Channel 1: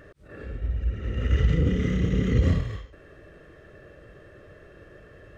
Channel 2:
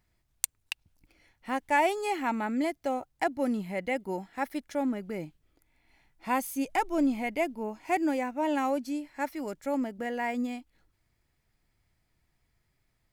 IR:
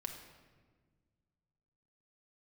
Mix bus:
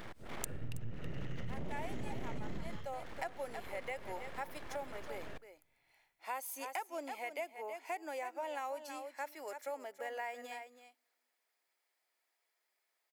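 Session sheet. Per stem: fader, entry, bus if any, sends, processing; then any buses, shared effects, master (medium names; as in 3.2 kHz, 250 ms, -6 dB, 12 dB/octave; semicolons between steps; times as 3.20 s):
+2.5 dB, 0.00 s, send -20 dB, no echo send, peak limiter -20.5 dBFS, peak gain reduction 10.5 dB; full-wave rectifier
-5.0 dB, 0.00 s, send -22 dB, echo send -11.5 dB, high-pass 470 Hz 24 dB/octave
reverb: on, RT60 1.5 s, pre-delay 5 ms
echo: delay 324 ms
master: treble shelf 11 kHz +5.5 dB; compression 4:1, threshold -38 dBFS, peak gain reduction 16 dB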